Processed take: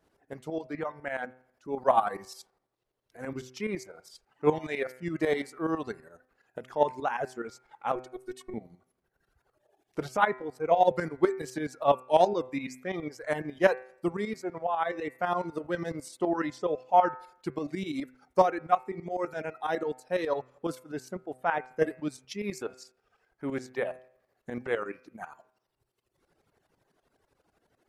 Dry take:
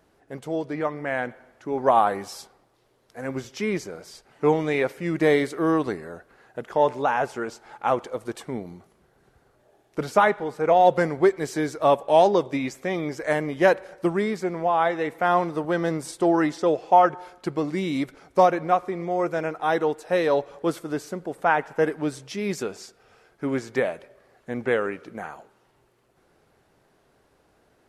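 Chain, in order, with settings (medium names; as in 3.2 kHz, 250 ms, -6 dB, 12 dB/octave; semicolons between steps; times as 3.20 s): tremolo saw up 12 Hz, depth 70%; reverb removal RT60 1.6 s; in parallel at -1.5 dB: level held to a coarse grid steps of 19 dB; 7.95–8.54 s: on the sum: robot voice 367 Hz; de-hum 127.8 Hz, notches 21; trim -5 dB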